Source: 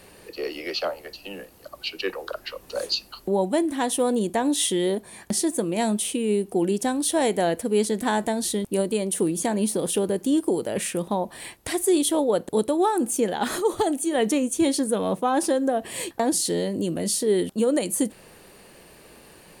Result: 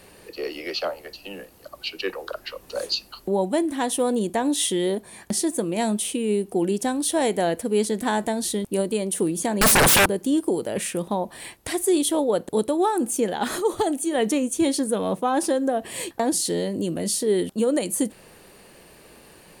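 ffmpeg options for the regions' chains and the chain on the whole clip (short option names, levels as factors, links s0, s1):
-filter_complex "[0:a]asettb=1/sr,asplit=3[s0][s1][s2];[s0]atrim=end=9.614[s3];[s1]atrim=start=9.61:end=10.06,asetpts=PTS-STARTPTS,afade=t=in:d=0.004:c=qsin,afade=t=out:st=0.446:d=0.004:c=qsin,highpass=180,aeval=exprs='0.237*sin(PI/2*7.94*val(0)/0.237)':c=same[s4];[s2]atrim=start=10.056[s5];[s3][s4]acrossfade=d=0.004:c1=hsin:c2=qsin[s6];[s6][s5]acrossfade=d=0.004:c1=qsin:c2=hsin"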